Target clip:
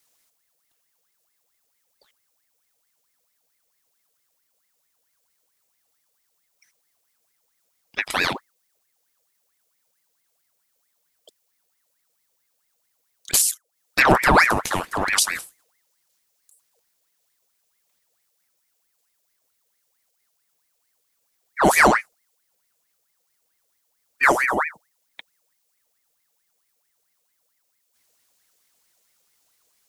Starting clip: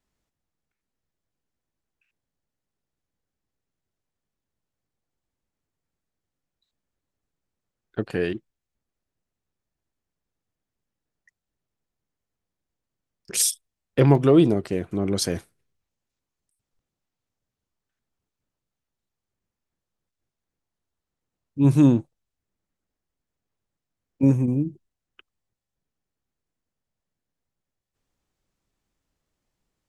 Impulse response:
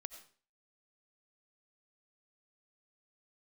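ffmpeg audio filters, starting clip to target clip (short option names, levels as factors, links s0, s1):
-filter_complex "[0:a]crystalizer=i=9:c=0,acrossover=split=380[s0][s1];[s1]acompressor=threshold=0.141:ratio=10[s2];[s0][s2]amix=inputs=2:normalize=0,aeval=exprs='val(0)*sin(2*PI*1300*n/s+1300*0.65/4.5*sin(2*PI*4.5*n/s))':c=same,volume=1.41"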